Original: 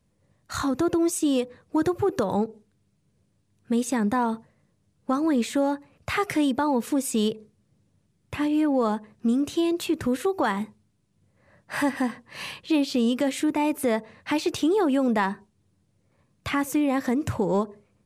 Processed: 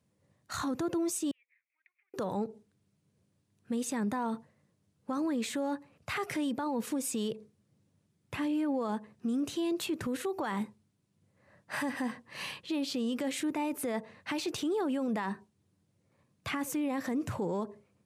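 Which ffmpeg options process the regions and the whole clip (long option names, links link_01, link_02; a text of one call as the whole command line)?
ffmpeg -i in.wav -filter_complex "[0:a]asettb=1/sr,asplit=3[link_01][link_02][link_03];[link_01]atrim=end=1.314[link_04];[link_02]atrim=start=1.31:end=2.14,asetpts=PTS-STARTPTS,afade=type=in:duration=0.004:curve=qsin,afade=type=out:start_time=0.826:duration=0.004:curve=qsin,acompressor=threshold=-38dB:ratio=5:attack=3.2:release=140:knee=1:detection=peak,asuperpass=centerf=2200:order=4:qfactor=5.2[link_05];[link_03]atrim=start=2.136[link_06];[link_04][link_05]acrossfade=duration=0.004:curve1=hsin:curve2=qsin[link_07];[link_07][link_06]acrossfade=duration=0.004:curve1=qsin:curve2=hsin,alimiter=limit=-22dB:level=0:latency=1:release=25,highpass=91,volume=-4dB" out.wav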